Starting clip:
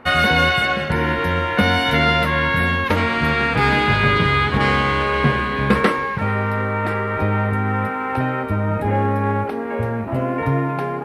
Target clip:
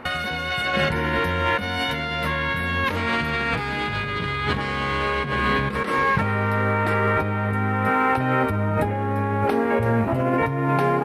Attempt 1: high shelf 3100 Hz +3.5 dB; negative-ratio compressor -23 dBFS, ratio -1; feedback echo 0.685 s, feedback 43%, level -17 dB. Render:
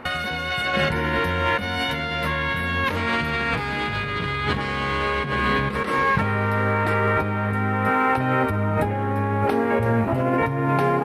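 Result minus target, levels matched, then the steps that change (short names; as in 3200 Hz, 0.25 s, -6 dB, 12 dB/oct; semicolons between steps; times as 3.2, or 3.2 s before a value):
echo-to-direct +9 dB
change: feedback echo 0.685 s, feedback 43%, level -26 dB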